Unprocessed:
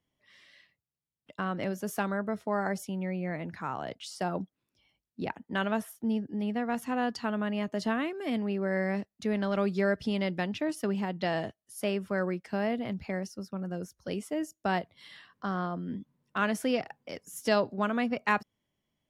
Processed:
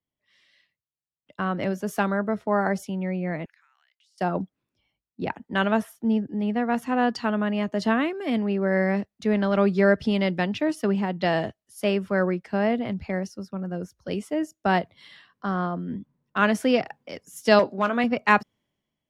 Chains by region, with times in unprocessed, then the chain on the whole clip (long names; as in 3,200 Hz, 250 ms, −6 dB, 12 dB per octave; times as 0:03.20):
0:03.45–0:04.18: Chebyshev high-pass filter 1,800 Hz, order 3 + downward compressor 20 to 1, threshold −58 dBFS
0:17.59–0:18.04: hard clipping −18.5 dBFS + high-pass filter 260 Hz 6 dB per octave + double-tracking delay 21 ms −12 dB
whole clip: high-shelf EQ 6,100 Hz −8.5 dB; multiband upward and downward expander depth 40%; level +7 dB